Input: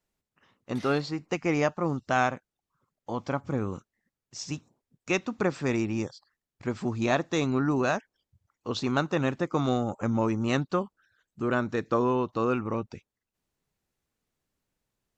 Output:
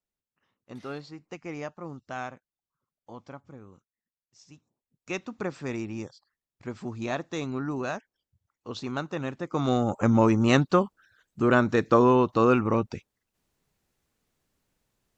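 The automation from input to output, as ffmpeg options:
-af "volume=13dB,afade=t=out:st=3.11:d=0.48:silence=0.446684,afade=t=in:st=4.54:d=0.65:silence=0.237137,afade=t=in:st=9.42:d=0.63:silence=0.266073"

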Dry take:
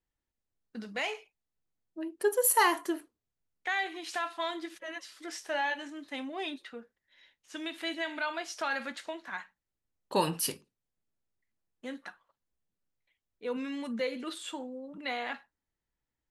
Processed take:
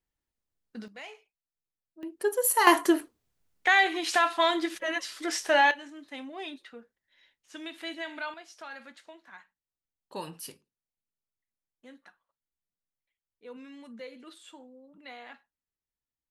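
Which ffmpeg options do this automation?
-af "asetnsamples=n=441:p=0,asendcmd='0.88 volume volume -10.5dB;2.03 volume volume 0dB;2.67 volume volume 10dB;5.71 volume volume -2.5dB;8.34 volume volume -10.5dB',volume=0dB"

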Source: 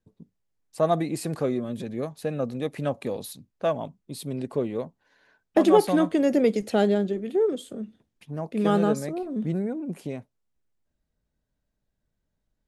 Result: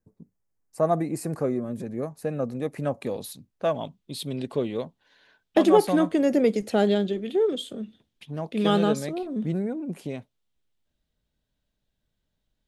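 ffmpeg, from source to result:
-af "asetnsamples=n=441:p=0,asendcmd='2.24 equalizer g -8;3.02 equalizer g 0;3.75 equalizer g 10;5.64 equalizer g -0.5;6.87 equalizer g 10.5;9.27 equalizer g 2.5;10.14 equalizer g 10',equalizer=f=3.4k:t=o:w=0.82:g=-14.5"

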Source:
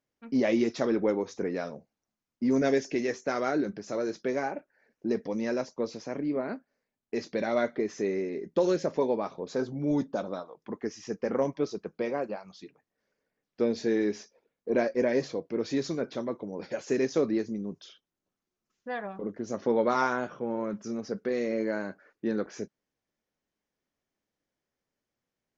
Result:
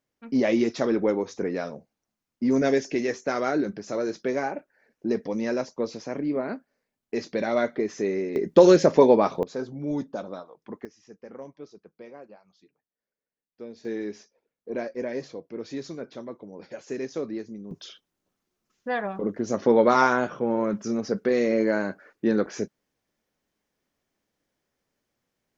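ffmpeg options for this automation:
-af "asetnsamples=n=441:p=0,asendcmd='8.36 volume volume 11dB;9.43 volume volume -1.5dB;10.85 volume volume -13.5dB;13.85 volume volume -5dB;17.71 volume volume 7dB',volume=3dB"

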